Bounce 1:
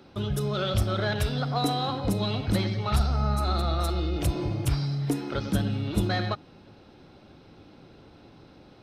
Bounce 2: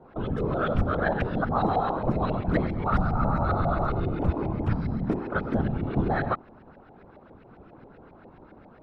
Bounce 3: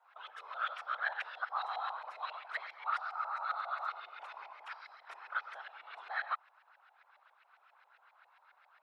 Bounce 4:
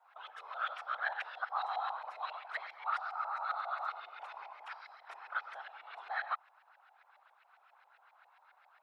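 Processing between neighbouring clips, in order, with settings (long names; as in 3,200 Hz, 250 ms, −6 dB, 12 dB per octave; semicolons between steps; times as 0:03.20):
auto-filter low-pass saw up 7.4 Hz 630–2,000 Hz; random phases in short frames
Bessel high-pass filter 1,500 Hz, order 6; level −1.5 dB
parametric band 770 Hz +5 dB 0.52 octaves; level −1 dB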